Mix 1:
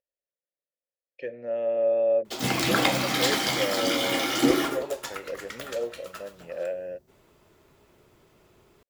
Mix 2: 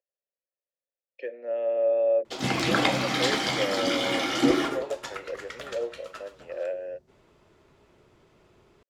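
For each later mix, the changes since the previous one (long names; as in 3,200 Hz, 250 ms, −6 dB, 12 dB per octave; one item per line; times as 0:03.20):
speech: add high-pass filter 310 Hz 24 dB per octave
master: add high-frequency loss of the air 58 metres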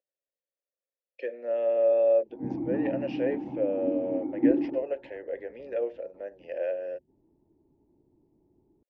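background: add formant resonators in series u
master: add low-shelf EQ 220 Hz +7.5 dB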